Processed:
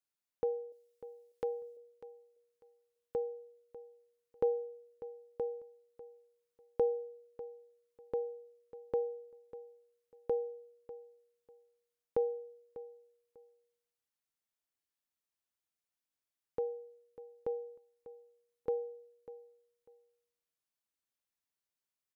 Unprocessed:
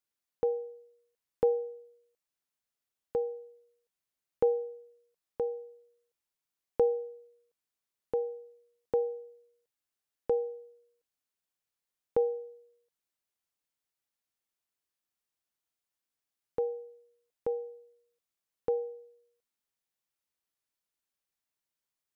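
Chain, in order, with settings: 0.72–1.77 tilt shelf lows -7.5 dB, about 1300 Hz; feedback echo 0.596 s, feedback 22%, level -15.5 dB; gain -4.5 dB

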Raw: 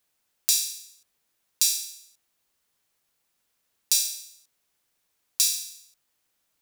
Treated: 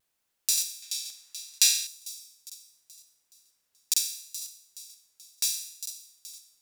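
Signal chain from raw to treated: on a send: thin delay 0.427 s, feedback 44%, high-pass 3100 Hz, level -12.5 dB; on the sum: vibrato 0.73 Hz 27 cents; 0.82–1.87 bell 1900 Hz +13 dB 3 oct; crackling interface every 0.48 s, samples 2048, repeat, from 0.53; gain -3.5 dB

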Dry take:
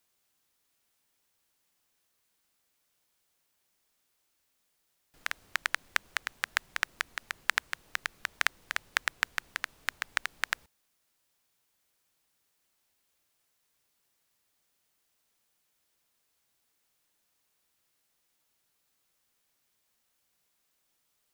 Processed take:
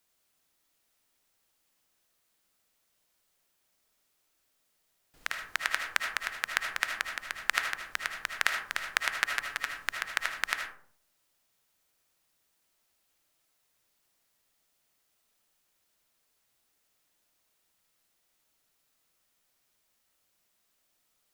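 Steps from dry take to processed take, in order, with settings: 9.09–9.76 comb 7 ms, depth 47%; digital reverb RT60 0.57 s, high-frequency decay 0.4×, pre-delay 35 ms, DRR 3 dB

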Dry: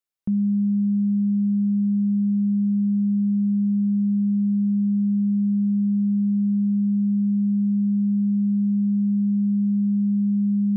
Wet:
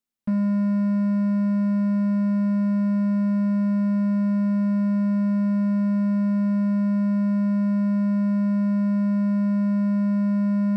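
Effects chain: low shelf 94 Hz +7.5 dB; notches 50/100/150 Hz; hard clip -30.5 dBFS, distortion -8 dB; small resonant body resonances 230 Hz, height 16 dB, ringing for 65 ms

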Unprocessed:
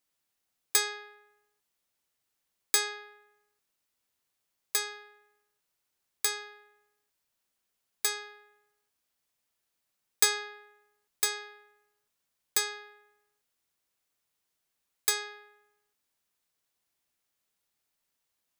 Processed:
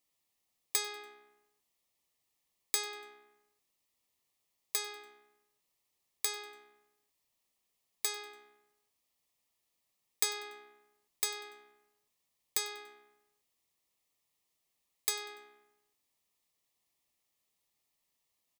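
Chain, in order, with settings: compressor 2:1, threshold -33 dBFS, peak gain reduction 8.5 dB; Butterworth band-stop 1500 Hz, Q 3.5; frequency-shifting echo 96 ms, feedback 45%, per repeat -66 Hz, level -22 dB

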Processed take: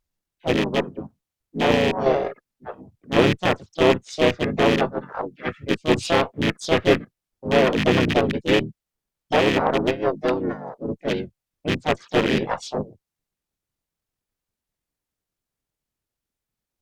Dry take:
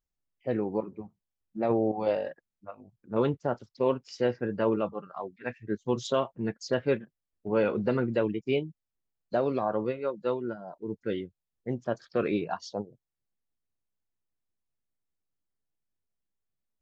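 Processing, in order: rattling part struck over -32 dBFS, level -19 dBFS; harmoniser -5 st -1 dB, +4 st -2 dB, +7 st -16 dB; added harmonics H 6 -22 dB, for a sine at -7 dBFS; gain +4 dB

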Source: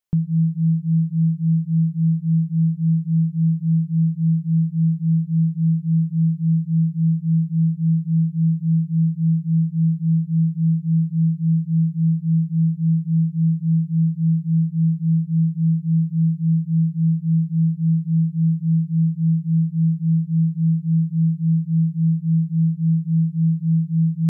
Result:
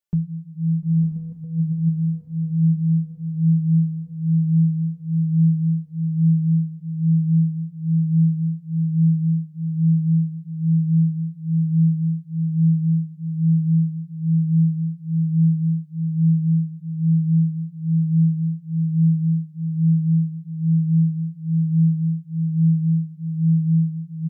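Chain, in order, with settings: 1.02–1.89 negative-ratio compressor -20 dBFS, ratio -0.5; diffused feedback echo 0.95 s, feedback 68%, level -7 dB; endless flanger 3 ms +1.1 Hz

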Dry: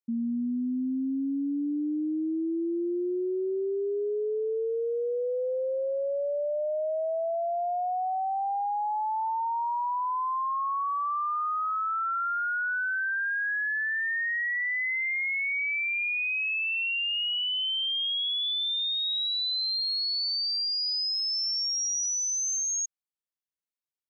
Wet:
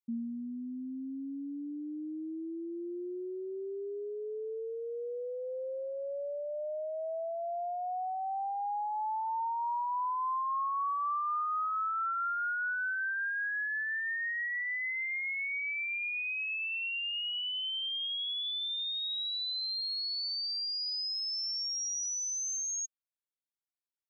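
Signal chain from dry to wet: reverb removal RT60 1.2 s; dynamic EQ 1100 Hz, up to +6 dB, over -48 dBFS, Q 0.99; gain -5.5 dB

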